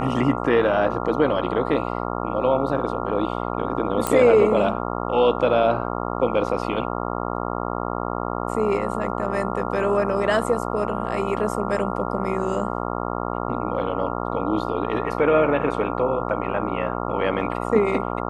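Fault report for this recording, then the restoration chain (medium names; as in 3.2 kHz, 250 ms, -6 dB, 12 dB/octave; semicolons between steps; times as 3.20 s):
buzz 60 Hz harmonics 23 -27 dBFS
4.07 s: pop -6 dBFS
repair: de-click; de-hum 60 Hz, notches 23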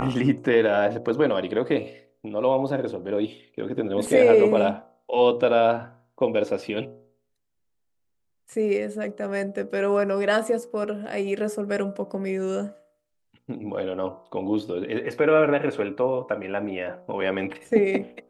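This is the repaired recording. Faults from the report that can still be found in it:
nothing left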